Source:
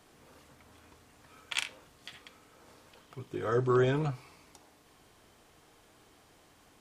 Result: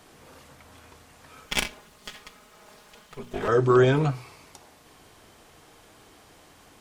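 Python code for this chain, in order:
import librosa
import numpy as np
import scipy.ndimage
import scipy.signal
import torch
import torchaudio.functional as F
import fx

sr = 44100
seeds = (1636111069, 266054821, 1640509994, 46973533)

y = fx.lower_of_two(x, sr, delay_ms=4.8, at=(1.45, 3.48))
y = fx.hum_notches(y, sr, base_hz=60, count=7)
y = F.gain(torch.from_numpy(y), 8.0).numpy()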